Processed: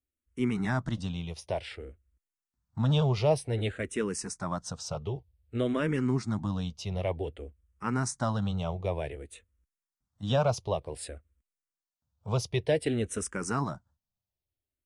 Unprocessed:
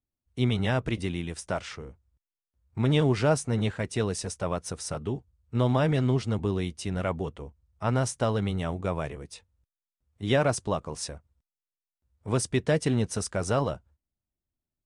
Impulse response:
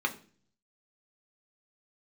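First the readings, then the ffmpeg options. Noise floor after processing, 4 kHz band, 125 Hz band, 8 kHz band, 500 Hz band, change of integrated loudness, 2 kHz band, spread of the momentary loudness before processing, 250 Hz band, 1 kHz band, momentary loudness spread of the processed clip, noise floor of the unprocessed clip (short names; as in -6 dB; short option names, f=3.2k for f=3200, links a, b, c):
under -85 dBFS, -3.0 dB, -3.0 dB, -3.5 dB, -3.0 dB, -3.0 dB, -4.0 dB, 17 LU, -3.0 dB, -2.5 dB, 16 LU, under -85 dBFS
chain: -filter_complex "[0:a]asplit=2[a][b];[b]afreqshift=-0.54[c];[a][c]amix=inputs=2:normalize=1"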